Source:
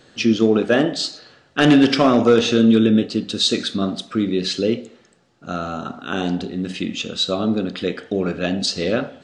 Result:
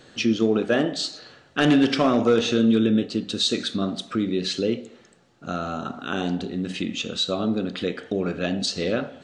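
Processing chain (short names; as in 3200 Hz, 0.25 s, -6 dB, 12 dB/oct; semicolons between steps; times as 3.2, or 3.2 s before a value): in parallel at +2 dB: compressor, threshold -29 dBFS, peak gain reduction 18.5 dB; on the sum: notch 5000 Hz, Q 18; gain -6.5 dB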